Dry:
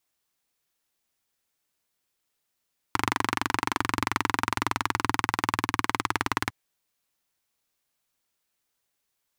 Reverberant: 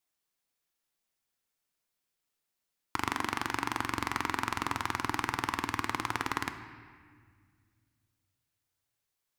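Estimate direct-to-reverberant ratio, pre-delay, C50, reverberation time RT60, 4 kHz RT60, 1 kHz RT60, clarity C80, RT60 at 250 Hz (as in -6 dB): 8.0 dB, 3 ms, 9.5 dB, 1.8 s, 1.4 s, 1.8 s, 10.5 dB, 2.7 s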